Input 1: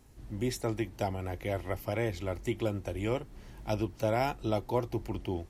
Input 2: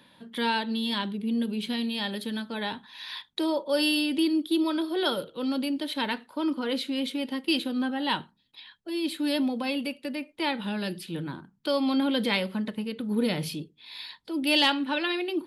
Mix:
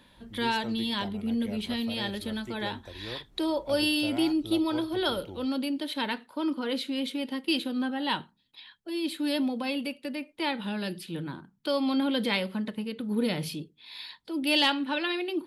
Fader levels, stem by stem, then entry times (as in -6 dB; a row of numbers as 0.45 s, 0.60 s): -9.5 dB, -1.5 dB; 0.00 s, 0.00 s